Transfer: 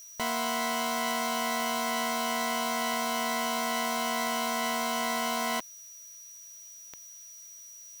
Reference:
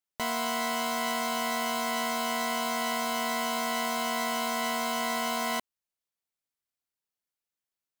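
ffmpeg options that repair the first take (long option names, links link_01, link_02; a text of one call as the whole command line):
ffmpeg -i in.wav -af "adeclick=threshold=4,bandreject=frequency=5800:width=30,afftdn=noise_reduction=30:noise_floor=-48" out.wav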